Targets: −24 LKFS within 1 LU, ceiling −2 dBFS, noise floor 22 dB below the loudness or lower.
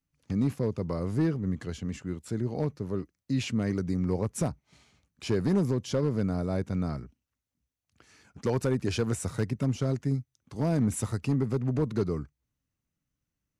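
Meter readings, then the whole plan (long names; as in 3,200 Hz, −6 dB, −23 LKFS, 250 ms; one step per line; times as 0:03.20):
share of clipped samples 0.7%; peaks flattened at −19.0 dBFS; integrated loudness −30.0 LKFS; sample peak −19.0 dBFS; target loudness −24.0 LKFS
→ clipped peaks rebuilt −19 dBFS
level +6 dB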